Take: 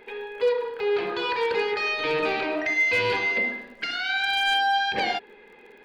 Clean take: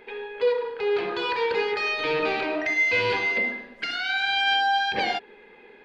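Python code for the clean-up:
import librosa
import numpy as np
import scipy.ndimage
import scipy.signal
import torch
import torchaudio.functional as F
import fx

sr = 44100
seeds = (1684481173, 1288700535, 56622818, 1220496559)

y = fx.fix_declip(x, sr, threshold_db=-16.0)
y = fx.fix_declick_ar(y, sr, threshold=6.5)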